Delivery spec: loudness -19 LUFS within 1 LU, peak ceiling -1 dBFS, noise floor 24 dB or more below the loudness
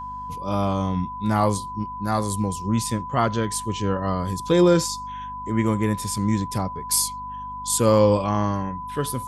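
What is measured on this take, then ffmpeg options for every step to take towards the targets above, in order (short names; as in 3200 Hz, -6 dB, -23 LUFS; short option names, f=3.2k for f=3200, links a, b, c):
hum 50 Hz; harmonics up to 250 Hz; hum level -42 dBFS; steady tone 1000 Hz; tone level -31 dBFS; loudness -23.0 LUFS; peak -5.5 dBFS; loudness target -19.0 LUFS
-> -af "bandreject=f=50:t=h:w=4,bandreject=f=100:t=h:w=4,bandreject=f=150:t=h:w=4,bandreject=f=200:t=h:w=4,bandreject=f=250:t=h:w=4"
-af "bandreject=f=1k:w=30"
-af "volume=4dB"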